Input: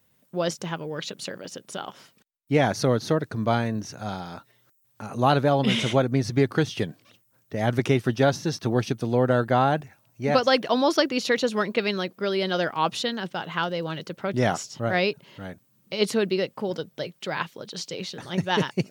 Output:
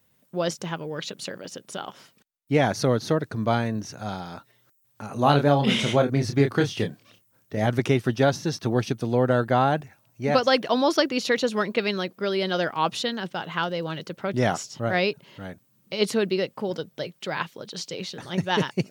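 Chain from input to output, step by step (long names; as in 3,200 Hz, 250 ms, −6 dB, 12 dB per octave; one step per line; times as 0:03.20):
0:05.13–0:07.67: double-tracking delay 28 ms −6 dB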